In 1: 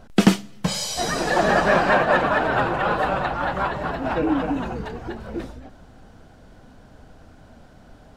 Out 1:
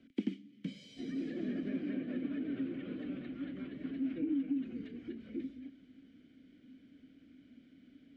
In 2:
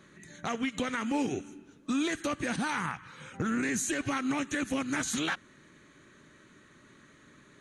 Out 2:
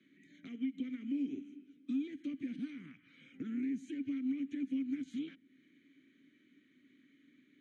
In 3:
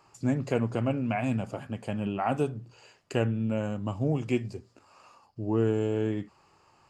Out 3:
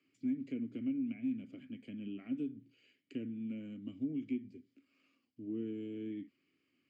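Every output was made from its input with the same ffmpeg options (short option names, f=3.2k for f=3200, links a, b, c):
-filter_complex "[0:a]asplit=3[a][b][c];[a]bandpass=f=270:t=q:w=8,volume=0dB[d];[b]bandpass=f=2.29k:t=q:w=8,volume=-6dB[e];[c]bandpass=f=3.01k:t=q:w=8,volume=-9dB[f];[d][e][f]amix=inputs=3:normalize=0,acrossover=split=150|500[g][h][i];[g]acompressor=threshold=-55dB:ratio=4[j];[h]acompressor=threshold=-34dB:ratio=4[k];[i]acompressor=threshold=-59dB:ratio=4[l];[j][k][l]amix=inputs=3:normalize=0,volume=1dB"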